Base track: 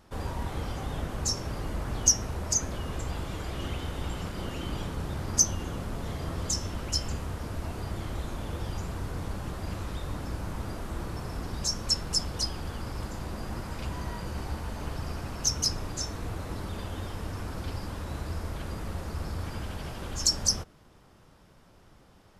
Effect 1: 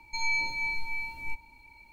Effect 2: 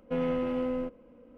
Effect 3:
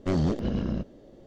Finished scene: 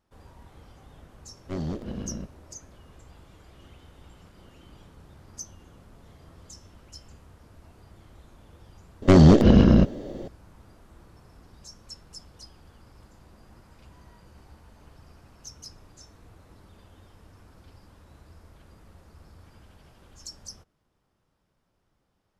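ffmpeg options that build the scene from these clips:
-filter_complex "[3:a]asplit=2[a][b];[0:a]volume=-17dB[c];[b]alimiter=level_in=20dB:limit=-1dB:release=50:level=0:latency=1[d];[c]asplit=2[e][f];[e]atrim=end=9.024[g];[d]atrim=end=1.26,asetpts=PTS-STARTPTS,volume=-5.5dB[h];[f]atrim=start=10.276[i];[a]atrim=end=1.26,asetpts=PTS-STARTPTS,volume=-6.5dB,afade=t=in:d=0.1,afade=t=out:st=1.16:d=0.1,adelay=1430[j];[g][h]acrossfade=d=0.004:c1=hsin:c2=hsin[k];[k][i]acrossfade=d=0.004:c1=hsin:c2=hsin[l];[l][j]amix=inputs=2:normalize=0"

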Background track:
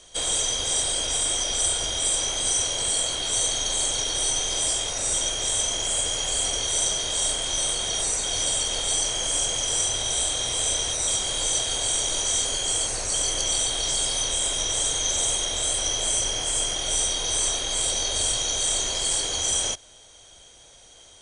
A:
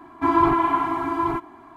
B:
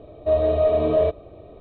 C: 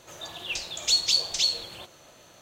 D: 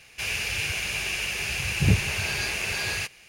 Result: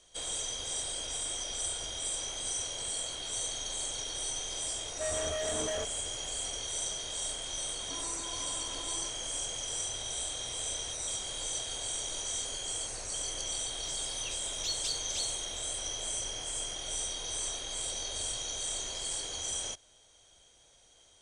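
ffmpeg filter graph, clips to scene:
-filter_complex "[0:a]volume=-11.5dB[a];[2:a]asoftclip=type=hard:threshold=-23.5dB[b];[1:a]acompressor=threshold=-30dB:ratio=6:attack=3.2:release=140:knee=1:detection=peak[c];[b]atrim=end=1.6,asetpts=PTS-STARTPTS,volume=-10.5dB,afade=t=in:d=0.004:c=hsin,afade=t=out:st=1.596:d=0.004:c=hsin,adelay=4740[d];[c]atrim=end=1.76,asetpts=PTS-STARTPTS,volume=-15.5dB,afade=t=in:d=0.004:c=hsin,afade=t=out:st=1.756:d=0.004:c=hsin,adelay=7690[e];[3:a]atrim=end=2.41,asetpts=PTS-STARTPTS,volume=-14dB,afade=t=in:d=0.004:c=hsin,afade=t=out:st=2.406:d=0.004:c=hsin,adelay=13760[f];[a][d][e][f]amix=inputs=4:normalize=0"

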